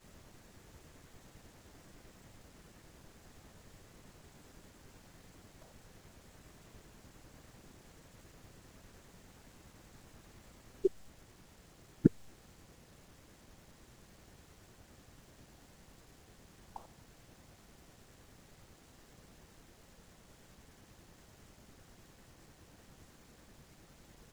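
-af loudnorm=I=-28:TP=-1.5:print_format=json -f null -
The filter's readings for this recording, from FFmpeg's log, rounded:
"input_i" : "-44.4",
"input_tp" : "-8.5",
"input_lra" : "19.2",
"input_thresh" : "-58.6",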